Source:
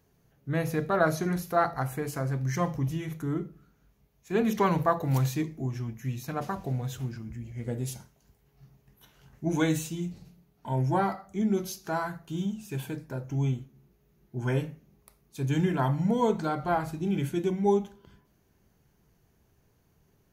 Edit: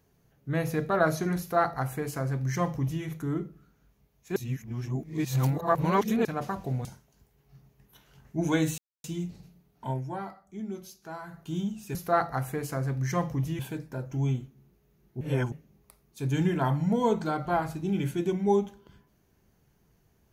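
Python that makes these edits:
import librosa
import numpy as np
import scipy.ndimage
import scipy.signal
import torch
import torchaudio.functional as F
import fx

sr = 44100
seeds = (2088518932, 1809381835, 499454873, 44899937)

y = fx.edit(x, sr, fx.duplicate(start_s=1.39, length_s=1.64, to_s=12.77),
    fx.reverse_span(start_s=4.36, length_s=1.89),
    fx.cut(start_s=6.85, length_s=1.08),
    fx.insert_silence(at_s=9.86, length_s=0.26),
    fx.fade_down_up(start_s=10.71, length_s=1.5, db=-10.0, fade_s=0.18, curve='qua'),
    fx.reverse_span(start_s=14.39, length_s=0.31), tone=tone)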